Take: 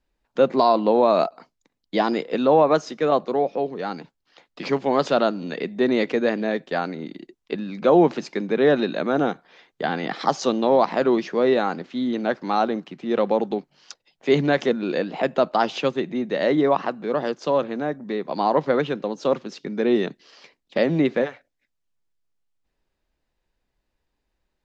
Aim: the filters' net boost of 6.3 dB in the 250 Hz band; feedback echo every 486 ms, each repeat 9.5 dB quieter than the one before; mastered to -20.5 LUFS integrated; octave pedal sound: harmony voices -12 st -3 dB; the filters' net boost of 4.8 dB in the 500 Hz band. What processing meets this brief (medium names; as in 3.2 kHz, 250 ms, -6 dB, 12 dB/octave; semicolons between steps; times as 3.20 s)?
peaking EQ 250 Hz +6.5 dB; peaking EQ 500 Hz +4 dB; feedback delay 486 ms, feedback 33%, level -9.5 dB; harmony voices -12 st -3 dB; trim -4.5 dB